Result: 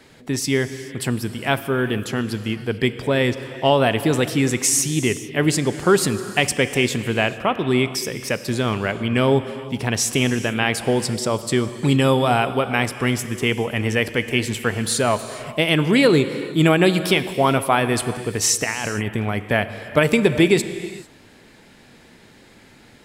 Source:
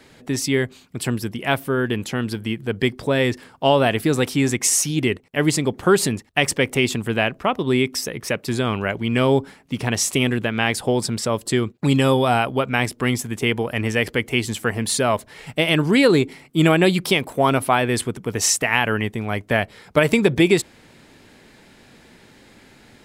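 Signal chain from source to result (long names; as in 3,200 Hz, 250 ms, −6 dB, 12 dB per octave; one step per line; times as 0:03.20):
0:18.64–0:19.40: compressor whose output falls as the input rises −25 dBFS, ratio −1
reverb whose tail is shaped and stops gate 470 ms flat, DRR 11 dB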